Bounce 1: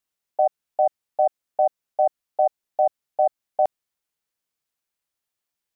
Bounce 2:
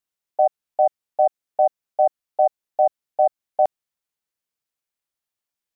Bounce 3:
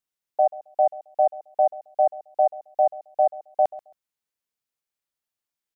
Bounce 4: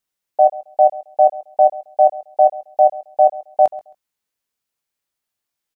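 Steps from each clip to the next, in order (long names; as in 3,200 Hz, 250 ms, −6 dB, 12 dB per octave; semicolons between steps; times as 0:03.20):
expander for the loud parts 1.5 to 1, over −28 dBFS; level +2.5 dB
repeating echo 134 ms, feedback 18%, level −19 dB; level −2 dB
double-tracking delay 20 ms −10 dB; level +6 dB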